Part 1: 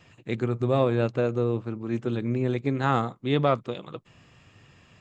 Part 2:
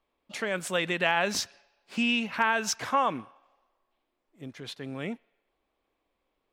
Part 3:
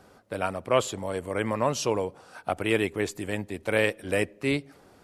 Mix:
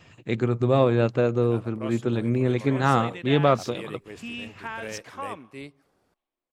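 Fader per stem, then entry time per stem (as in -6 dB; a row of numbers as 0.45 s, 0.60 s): +3.0 dB, -10.0 dB, -14.0 dB; 0.00 s, 2.25 s, 1.10 s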